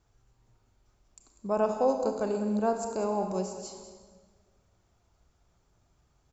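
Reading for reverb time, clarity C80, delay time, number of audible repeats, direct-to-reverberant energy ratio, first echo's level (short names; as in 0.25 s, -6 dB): 1.5 s, 6.5 dB, 0.195 s, 1, 4.5 dB, -12.5 dB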